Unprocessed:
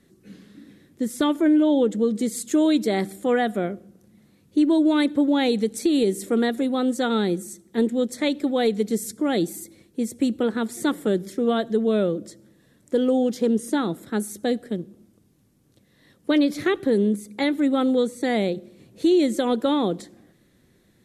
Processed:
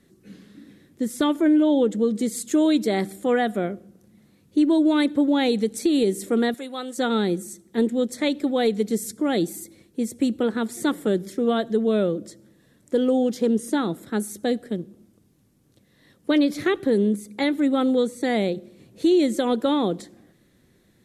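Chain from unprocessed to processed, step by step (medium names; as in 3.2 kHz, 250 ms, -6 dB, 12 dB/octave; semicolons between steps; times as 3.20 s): 6.54–6.98 s: high-pass 1.2 kHz 6 dB/octave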